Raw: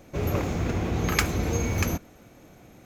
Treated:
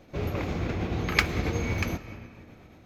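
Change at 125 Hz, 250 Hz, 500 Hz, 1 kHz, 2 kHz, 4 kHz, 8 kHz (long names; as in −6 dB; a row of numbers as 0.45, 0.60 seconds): −3.0, −3.0, −3.0, −2.5, +1.5, 0.0, −9.5 decibels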